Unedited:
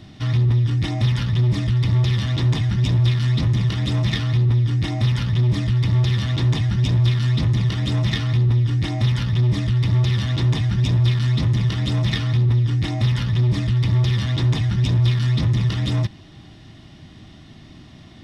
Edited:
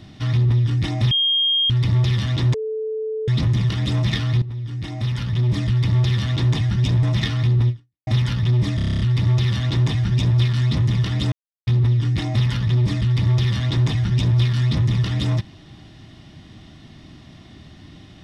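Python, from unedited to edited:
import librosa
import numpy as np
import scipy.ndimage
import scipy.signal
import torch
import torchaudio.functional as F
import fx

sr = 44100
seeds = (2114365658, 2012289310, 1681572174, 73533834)

y = fx.edit(x, sr, fx.bleep(start_s=1.11, length_s=0.59, hz=3230.0, db=-15.5),
    fx.bleep(start_s=2.54, length_s=0.74, hz=437.0, db=-22.5),
    fx.fade_in_from(start_s=4.42, length_s=1.24, floor_db=-15.0),
    fx.cut(start_s=7.03, length_s=0.9),
    fx.fade_out_span(start_s=8.59, length_s=0.38, curve='exp'),
    fx.stutter(start_s=9.66, slice_s=0.03, count=9),
    fx.silence(start_s=11.98, length_s=0.35), tone=tone)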